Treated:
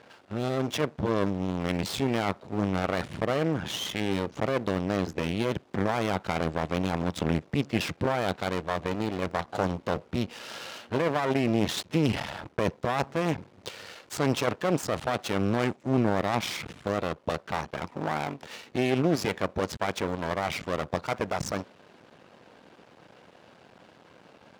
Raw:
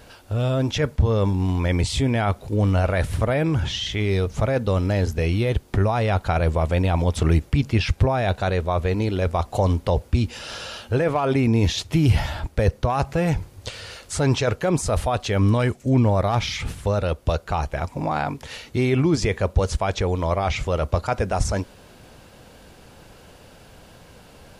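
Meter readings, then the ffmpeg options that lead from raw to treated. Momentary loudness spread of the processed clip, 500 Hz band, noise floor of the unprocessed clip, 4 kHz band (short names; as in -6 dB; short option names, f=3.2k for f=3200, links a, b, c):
7 LU, -5.5 dB, -49 dBFS, -4.5 dB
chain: -af "adynamicsmooth=sensitivity=6:basefreq=3.5k,aeval=exprs='max(val(0),0)':c=same,highpass=180"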